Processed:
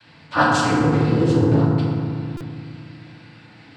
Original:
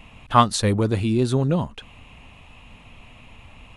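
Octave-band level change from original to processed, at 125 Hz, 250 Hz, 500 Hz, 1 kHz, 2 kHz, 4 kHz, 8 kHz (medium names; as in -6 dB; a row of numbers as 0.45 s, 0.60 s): +4.0 dB, +5.0 dB, +2.5 dB, +0.5 dB, +10.0 dB, -1.5 dB, no reading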